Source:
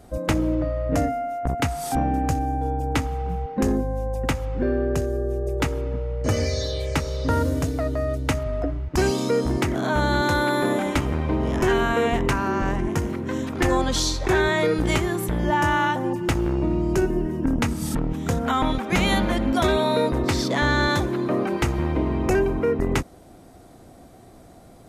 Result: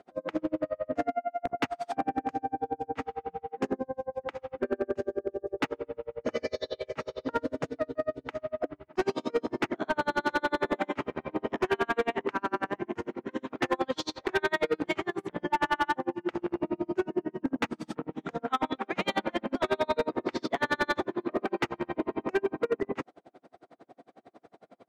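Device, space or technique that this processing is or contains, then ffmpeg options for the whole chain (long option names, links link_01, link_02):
helicopter radio: -af "highpass=320,lowpass=2900,aeval=exprs='val(0)*pow(10,-39*(0.5-0.5*cos(2*PI*11*n/s))/20)':channel_layout=same,asoftclip=type=hard:threshold=-22.5dB,volume=2.5dB"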